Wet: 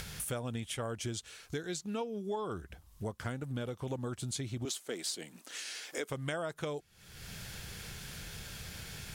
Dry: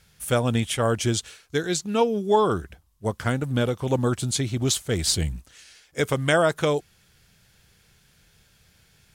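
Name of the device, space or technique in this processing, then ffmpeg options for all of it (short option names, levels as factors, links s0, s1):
upward and downward compression: -filter_complex "[0:a]asettb=1/sr,asplit=3[s0][s1][s2];[s0]atrim=end=4.654[s3];[s1]atrim=start=4.65:end=6.1,asetpts=PTS-STARTPTS,afade=t=in:d=0.004:c=qsin,afade=t=out:st=1.446:d=0.004:c=qsin,highpass=f=250:w=0.5412,highpass=f=250:w=1.3066[s4];[s2]atrim=start=6.096[s5];[s3][s4]acrossfade=d=0.004:c1=hsin:c2=qsin[s6];[s6][s5]acrossfade=d=0.004:c1=qsin:c2=hsin,acompressor=mode=upward:threshold=0.0398:ratio=2.5,acompressor=threshold=0.0178:ratio=4,volume=0.794"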